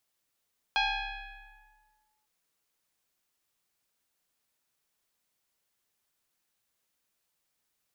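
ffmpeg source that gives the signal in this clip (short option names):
-f lavfi -i "aevalsrc='0.075*pow(10,-3*t/1.52)*sin(2*PI*858*t+3.7*clip(1-t/1.49,0,1)*sin(2*PI*0.96*858*t))':d=1.5:s=44100"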